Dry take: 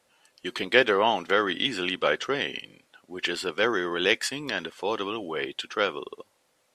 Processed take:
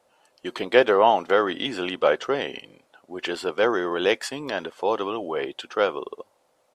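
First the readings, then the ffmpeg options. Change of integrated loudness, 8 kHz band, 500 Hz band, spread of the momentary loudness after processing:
+2.5 dB, -3.0 dB, +5.0 dB, 17 LU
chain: -af "firequalizer=gain_entry='entry(190,0);entry(640,8);entry(1800,-3)':delay=0.05:min_phase=1"

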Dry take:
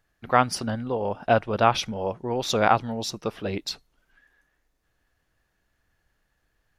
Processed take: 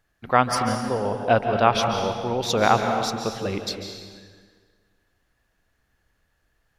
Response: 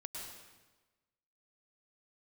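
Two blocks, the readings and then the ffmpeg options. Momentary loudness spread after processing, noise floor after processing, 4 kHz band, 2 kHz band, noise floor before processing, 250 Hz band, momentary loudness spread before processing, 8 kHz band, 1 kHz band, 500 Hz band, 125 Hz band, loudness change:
10 LU, -71 dBFS, +2.5 dB, +2.0 dB, -74 dBFS, +2.5 dB, 10 LU, +2.5 dB, +2.5 dB, +2.5 dB, +2.0 dB, +2.5 dB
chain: -filter_complex "[0:a]asplit=2[a][b];[1:a]atrim=start_sample=2205,asetrate=31311,aresample=44100[c];[b][c]afir=irnorm=-1:irlink=0,volume=1dB[d];[a][d]amix=inputs=2:normalize=0,volume=-3.5dB"

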